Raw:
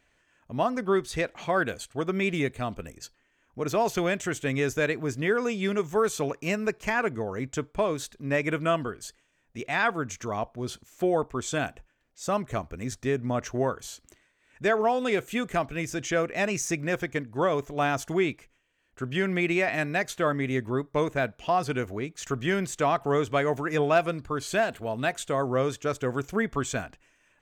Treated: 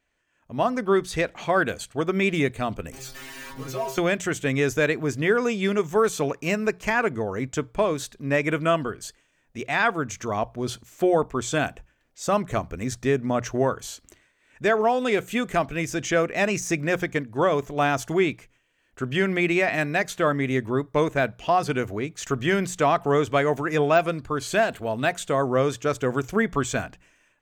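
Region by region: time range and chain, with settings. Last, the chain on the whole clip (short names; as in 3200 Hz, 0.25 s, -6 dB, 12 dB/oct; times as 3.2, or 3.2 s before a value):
2.92–3.98 zero-crossing step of -29 dBFS + metallic resonator 130 Hz, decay 0.31 s, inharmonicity 0.002
whole clip: de-esser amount 65%; notches 60/120/180 Hz; AGC gain up to 13.5 dB; gain -7.5 dB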